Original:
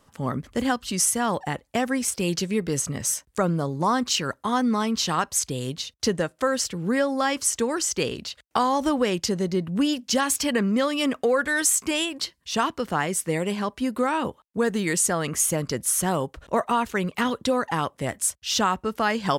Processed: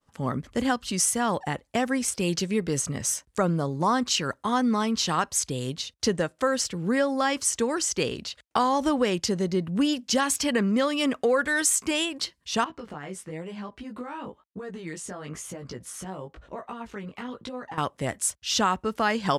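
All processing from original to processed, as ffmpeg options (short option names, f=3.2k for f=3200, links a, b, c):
-filter_complex "[0:a]asettb=1/sr,asplit=3[a][b][c];[a]atrim=end=12.644[d];[b]atrim=start=12.64:end=17.78,asetpts=PTS-STARTPTS,afade=t=in:d=0.004:c=qsin,afade=t=out:st=5.136:d=0.004:c=qsin,lowpass=f=2.9k:p=1,acompressor=threshold=-29dB:ratio=5:attack=3.2:release=140:knee=1:detection=peak,flanger=delay=15.5:depth=5.7:speed=1[e];[c]atrim=start=17.776[f];[d][e]acrossfade=d=0.004:c1=hsin:c2=qsin[g];[g][f]acrossfade=d=0.004:c1=qsin:c2=hsin,agate=range=-33dB:threshold=-53dB:ratio=3:detection=peak,lowpass=11k,volume=-1dB"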